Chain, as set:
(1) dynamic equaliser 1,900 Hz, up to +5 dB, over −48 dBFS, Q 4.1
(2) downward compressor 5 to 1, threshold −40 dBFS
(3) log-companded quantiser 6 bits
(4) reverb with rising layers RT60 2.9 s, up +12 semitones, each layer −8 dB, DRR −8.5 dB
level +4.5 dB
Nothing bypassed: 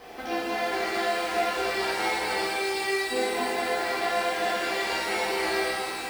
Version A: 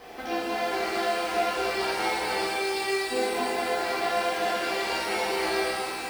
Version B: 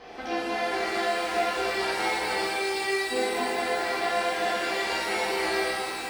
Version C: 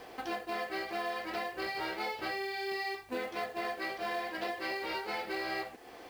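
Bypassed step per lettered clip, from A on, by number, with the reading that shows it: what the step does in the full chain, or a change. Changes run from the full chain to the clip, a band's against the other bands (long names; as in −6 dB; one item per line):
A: 1, 2 kHz band −2.0 dB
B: 3, distortion level −23 dB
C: 4, 8 kHz band −9.5 dB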